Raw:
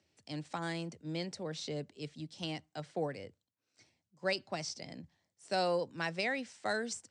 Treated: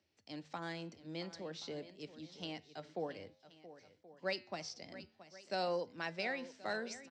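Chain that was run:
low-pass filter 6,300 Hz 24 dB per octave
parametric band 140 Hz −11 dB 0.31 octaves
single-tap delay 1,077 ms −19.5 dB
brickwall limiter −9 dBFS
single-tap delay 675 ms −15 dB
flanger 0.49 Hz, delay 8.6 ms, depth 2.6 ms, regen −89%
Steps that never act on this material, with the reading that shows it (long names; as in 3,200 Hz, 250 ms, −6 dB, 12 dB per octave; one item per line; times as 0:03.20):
brickwall limiter −9 dBFS: peak of its input −20.5 dBFS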